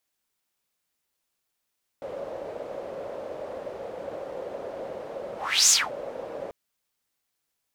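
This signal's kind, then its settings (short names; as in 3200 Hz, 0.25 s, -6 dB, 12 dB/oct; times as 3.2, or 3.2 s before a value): whoosh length 4.49 s, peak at 3.68, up 0.36 s, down 0.22 s, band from 550 Hz, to 6900 Hz, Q 5.6, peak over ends 19 dB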